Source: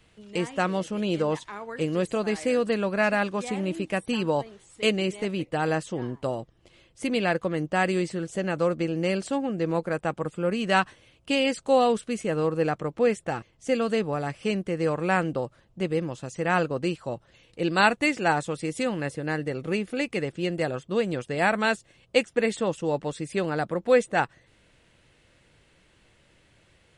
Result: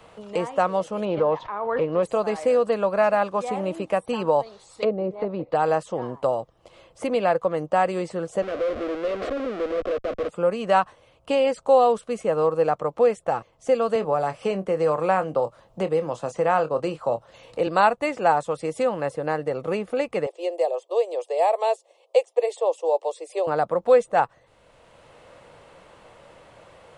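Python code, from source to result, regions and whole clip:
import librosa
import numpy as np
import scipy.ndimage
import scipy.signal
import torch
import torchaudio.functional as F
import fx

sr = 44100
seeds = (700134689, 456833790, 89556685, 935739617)

y = fx.chain(x, sr, fx.self_delay(depth_ms=0.075),
    fx.gaussian_blur(sigma=2.3),
    fx.pre_swell(db_per_s=59.0), at=(1.05, 2.03))
y = fx.chain(y, sr, fx.env_lowpass_down(base_hz=710.0, full_db=-23.5),
    fx.peak_eq(hz=4300.0, db=13.5, octaves=0.78),
    fx.notch(hz=3100.0, q=15.0), at=(4.43, 5.55))
y = fx.chain(y, sr, fx.schmitt(flips_db=-40.5),
    fx.lowpass(hz=2600.0, slope=12),
    fx.fixed_phaser(hz=370.0, stages=4), at=(8.42, 10.29))
y = fx.chain(y, sr, fx.doubler(ms=26.0, db=-11.5),
    fx.band_squash(depth_pct=40), at=(13.95, 17.67))
y = fx.chain(y, sr, fx.steep_highpass(hz=320.0, slope=72),
    fx.fixed_phaser(hz=600.0, stages=4), at=(20.26, 23.47))
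y = fx.band_shelf(y, sr, hz=770.0, db=11.5, octaves=1.7)
y = fx.band_squash(y, sr, depth_pct=40)
y = F.gain(torch.from_numpy(y), -4.5).numpy()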